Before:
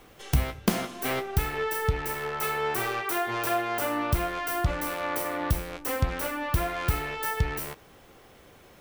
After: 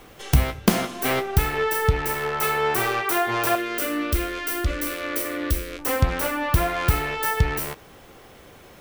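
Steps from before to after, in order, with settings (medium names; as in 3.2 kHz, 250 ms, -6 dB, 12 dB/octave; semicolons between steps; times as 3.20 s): 3.55–5.79 s: static phaser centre 340 Hz, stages 4; trim +6 dB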